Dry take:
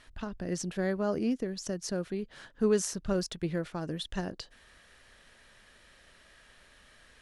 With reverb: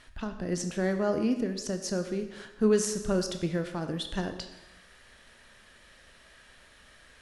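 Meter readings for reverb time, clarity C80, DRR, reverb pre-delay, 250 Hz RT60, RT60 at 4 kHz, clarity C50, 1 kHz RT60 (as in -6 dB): 1.1 s, 10.5 dB, 7.0 dB, 14 ms, 1.0 s, 1.0 s, 9.0 dB, 1.1 s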